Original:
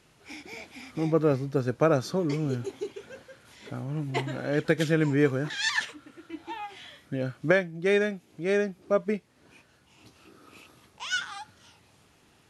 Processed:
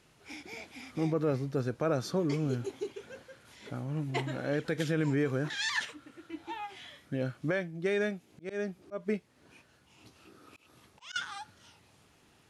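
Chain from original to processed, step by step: 8.09–11.16 s: slow attack 202 ms; peak limiter -18 dBFS, peak gain reduction 9 dB; trim -2.5 dB

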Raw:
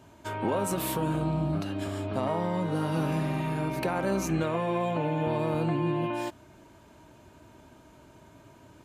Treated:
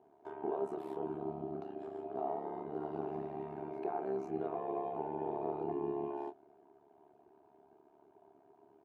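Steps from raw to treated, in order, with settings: doubling 25 ms -8 dB; AM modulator 71 Hz, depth 90%; two resonant band-passes 540 Hz, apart 0.81 oct; trim +2.5 dB

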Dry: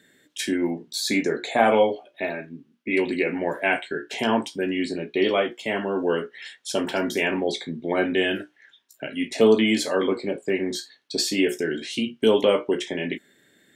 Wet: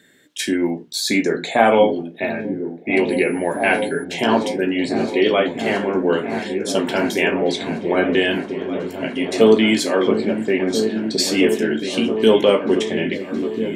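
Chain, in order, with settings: delay with an opening low-pass 670 ms, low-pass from 200 Hz, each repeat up 1 oct, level -3 dB; 3.09–4.03 s: whistle 10 kHz -47 dBFS; trim +4.5 dB

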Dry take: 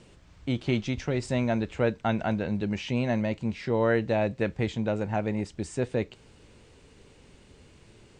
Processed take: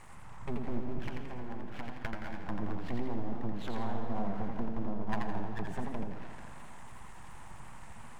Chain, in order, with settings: low-pass that closes with the level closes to 310 Hz, closed at -24 dBFS; FFT filter 120 Hz 0 dB, 170 Hz -17 dB, 270 Hz -10 dB, 460 Hz -21 dB, 890 Hz +11 dB, 2 kHz -3 dB, 3.5 kHz -27 dB, 8.4 kHz 0 dB; repeats whose band climbs or falls 220 ms, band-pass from 560 Hz, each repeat 0.7 oct, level -7 dB; compression 1.5:1, threshold -45 dBFS, peak gain reduction 6.5 dB; 1.04–2.49 s: tilt shelf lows -7.5 dB, about 1.5 kHz; full-wave rectifier; on a send at -9 dB: reverberation RT60 2.1 s, pre-delay 100 ms; on the sum: modulated delay 84 ms, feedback 46%, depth 136 cents, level -4 dB; trim +6.5 dB

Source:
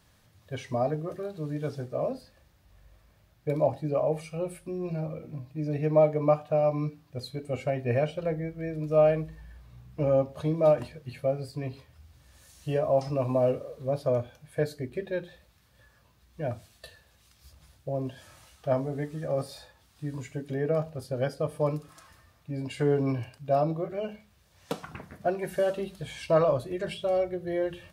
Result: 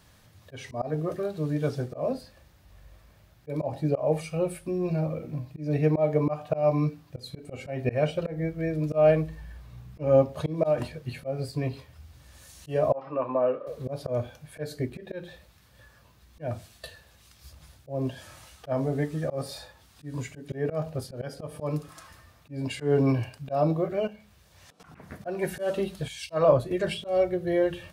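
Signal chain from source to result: 24.07–24.80 s: compression 12:1, threshold -46 dBFS, peak gain reduction 20 dB; slow attack 175 ms; 12.93–13.67 s: cabinet simulation 400–2400 Hz, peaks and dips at 430 Hz -5 dB, 710 Hz -8 dB, 1.2 kHz +5 dB, 2.1 kHz -7 dB; 26.08–26.71 s: three bands expanded up and down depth 70%; trim +5 dB

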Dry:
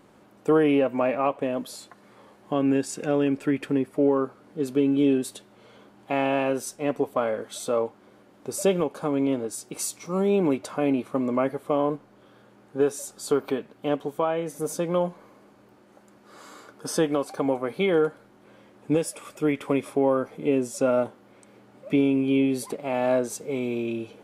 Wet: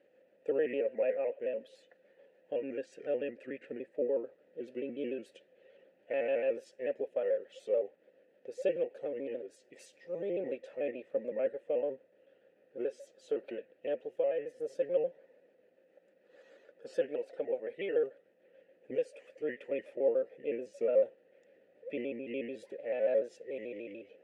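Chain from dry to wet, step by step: pitch shift switched off and on -2.5 st, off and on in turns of 73 ms; vowel filter e

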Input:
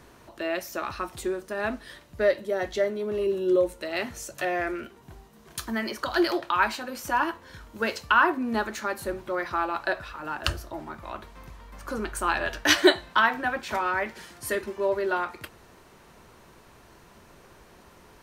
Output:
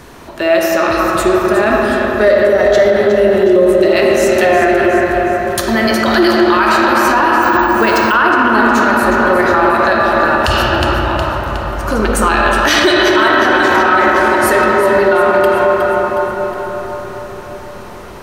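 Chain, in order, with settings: two-band feedback delay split 880 Hz, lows 143 ms, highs 364 ms, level -10 dB; reverberation RT60 5.5 s, pre-delay 15 ms, DRR -2 dB; 7.42–8.14 s: careless resampling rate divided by 2×, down none, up hold; loudness maximiser +16 dB; trim -1 dB

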